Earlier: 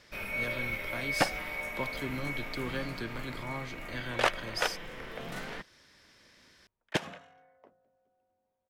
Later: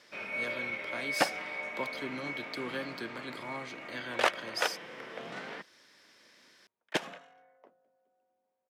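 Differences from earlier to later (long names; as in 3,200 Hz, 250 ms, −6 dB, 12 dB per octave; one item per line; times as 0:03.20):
first sound: add high-frequency loss of the air 110 metres
master: add high-pass filter 240 Hz 12 dB per octave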